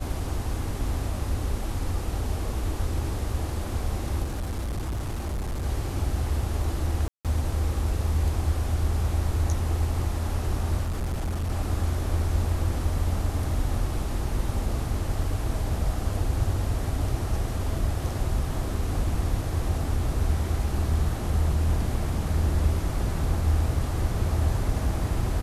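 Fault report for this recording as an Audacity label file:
4.230000	5.660000	clipped -26 dBFS
7.080000	7.250000	dropout 167 ms
10.830000	11.520000	clipped -24.5 dBFS

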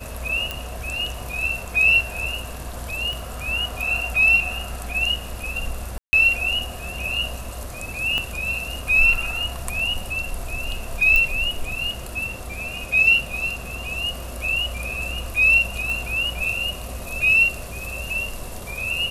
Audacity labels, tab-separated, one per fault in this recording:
0.510000	0.510000	pop
3.130000	3.130000	pop
5.980000	6.130000	dropout 150 ms
8.180000	8.180000	pop -11 dBFS
11.160000	11.160000	pop -7 dBFS
15.900000	15.900000	pop

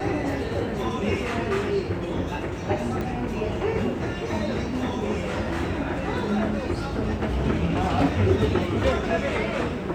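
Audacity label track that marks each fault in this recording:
3.010000	3.010000	pop -19 dBFS

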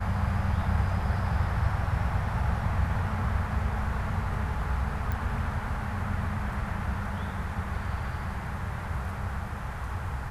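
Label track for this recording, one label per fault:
5.120000	5.120000	pop

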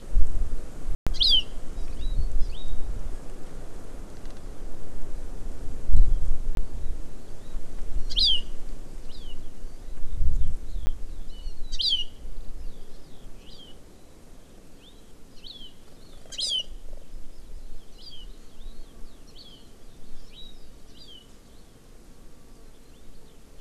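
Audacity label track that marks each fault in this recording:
0.950000	1.070000	dropout 116 ms
6.550000	6.570000	dropout 22 ms
10.860000	10.870000	dropout 10 ms

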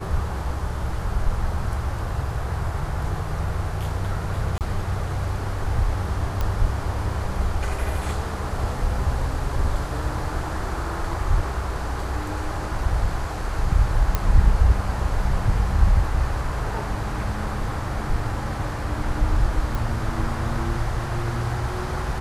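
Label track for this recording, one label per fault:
4.580000	4.610000	dropout 28 ms
6.410000	6.410000	pop -12 dBFS
14.150000	14.150000	pop -7 dBFS
19.750000	19.750000	pop

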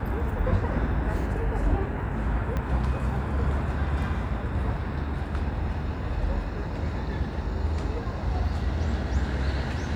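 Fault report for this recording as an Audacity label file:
2.570000	2.570000	pop -18 dBFS

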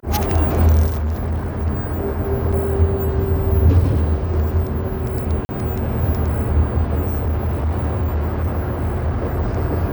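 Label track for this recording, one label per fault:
0.860000	1.670000	clipped -18 dBFS
2.520000	2.530000	dropout 6.1 ms
5.450000	5.490000	dropout 40 ms
7.050000	9.630000	clipped -16 dBFS

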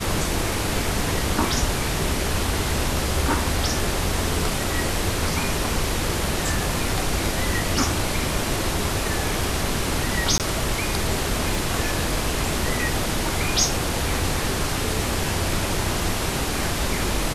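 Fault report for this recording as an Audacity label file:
10.380000	10.400000	dropout 18 ms
11.550000	11.550000	pop

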